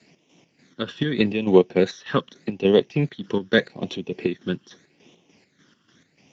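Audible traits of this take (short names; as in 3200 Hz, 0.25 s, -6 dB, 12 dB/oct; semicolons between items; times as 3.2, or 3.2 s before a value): phasing stages 12, 0.82 Hz, lowest notch 720–1500 Hz; chopped level 3.4 Hz, depth 60%, duty 50%; Speex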